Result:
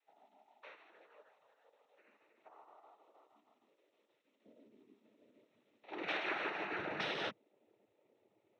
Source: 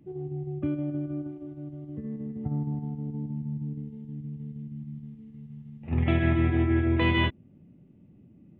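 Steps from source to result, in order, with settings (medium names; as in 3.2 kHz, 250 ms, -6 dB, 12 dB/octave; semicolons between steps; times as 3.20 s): spectral gate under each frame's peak -15 dB weak; high-pass 1.2 kHz 12 dB/octave, from 4.45 s 360 Hz, from 6.78 s 120 Hz; noise-vocoded speech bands 12; trim -1.5 dB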